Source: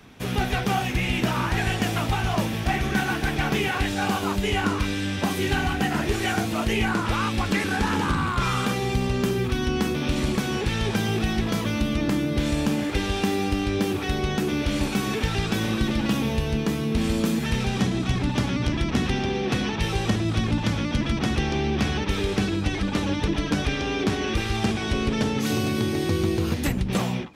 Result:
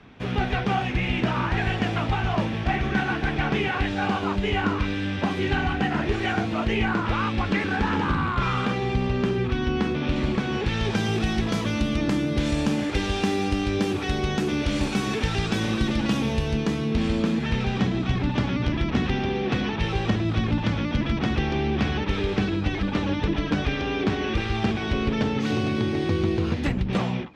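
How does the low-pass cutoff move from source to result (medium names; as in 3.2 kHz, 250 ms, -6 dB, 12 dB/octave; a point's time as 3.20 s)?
10.47 s 3.3 kHz
11.12 s 7.8 kHz
16.46 s 7.8 kHz
17.27 s 3.7 kHz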